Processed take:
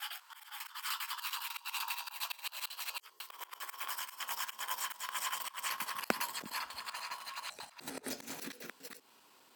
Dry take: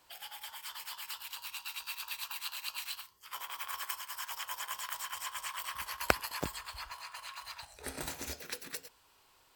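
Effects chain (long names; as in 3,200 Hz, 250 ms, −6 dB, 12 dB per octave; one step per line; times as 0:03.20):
slices reordered back to front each 100 ms, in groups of 3
high-pass filter sweep 1,200 Hz → 220 Hz, 0:01.23–0:04.31
volume swells 162 ms
level +2.5 dB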